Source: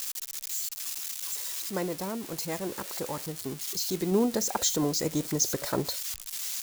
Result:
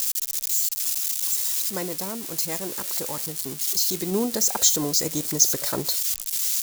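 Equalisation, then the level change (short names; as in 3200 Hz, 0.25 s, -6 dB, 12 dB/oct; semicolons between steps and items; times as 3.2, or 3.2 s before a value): high shelf 3500 Hz +11 dB; 0.0 dB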